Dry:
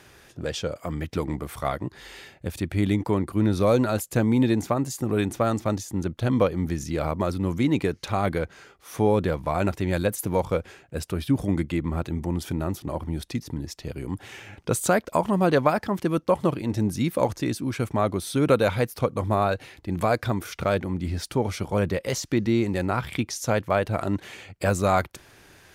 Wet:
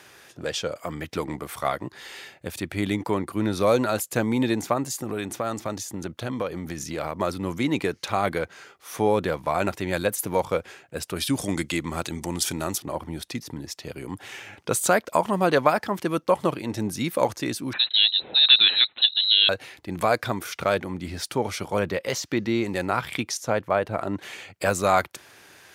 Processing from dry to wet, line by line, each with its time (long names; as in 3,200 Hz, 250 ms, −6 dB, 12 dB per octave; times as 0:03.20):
0:04.88–0:07.21: downward compressor, threshold −23 dBFS
0:11.16–0:12.78: parametric band 7,400 Hz +13 dB 2.3 octaves
0:17.73–0:19.49: voice inversion scrambler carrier 4,000 Hz
0:21.79–0:22.65: parametric band 9,600 Hz −6.5 dB 1.1 octaves
0:23.37–0:24.20: high-shelf EQ 2,200 Hz −10 dB
whole clip: high-pass filter 87 Hz; low-shelf EQ 350 Hz −9.5 dB; level +3.5 dB